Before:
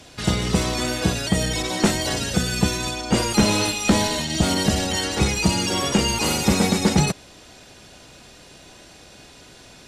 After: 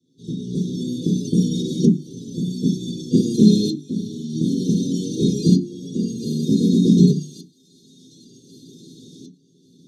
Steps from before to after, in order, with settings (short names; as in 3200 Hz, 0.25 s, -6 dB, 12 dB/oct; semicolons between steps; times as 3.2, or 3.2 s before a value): octaver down 1 oct, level -3 dB; thin delay 1.132 s, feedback 48%, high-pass 3300 Hz, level -11 dB; tremolo saw up 0.54 Hz, depth 95%; Chebyshev band-stop 400–3400 Hz, order 5; notches 50/100/150/200/250/300/350 Hz; small resonant body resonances 550/920 Hz, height 14 dB, ringing for 20 ms; dynamic EQ 100 Hz, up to -8 dB, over -37 dBFS, Q 1.3; reverb RT60 0.15 s, pre-delay 3 ms, DRR -5 dB; gain -12 dB